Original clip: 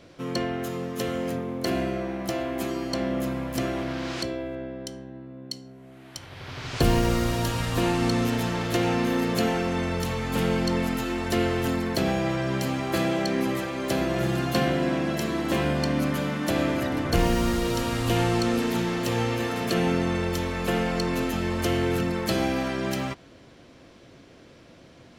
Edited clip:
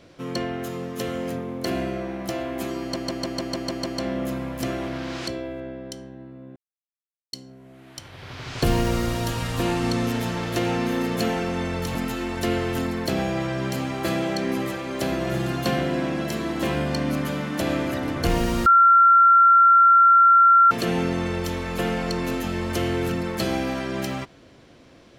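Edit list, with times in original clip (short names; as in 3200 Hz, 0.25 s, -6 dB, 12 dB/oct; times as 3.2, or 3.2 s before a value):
2.81 stutter 0.15 s, 8 plays
5.51 insert silence 0.77 s
10.13–10.84 cut
17.55–19.6 bleep 1370 Hz -10.5 dBFS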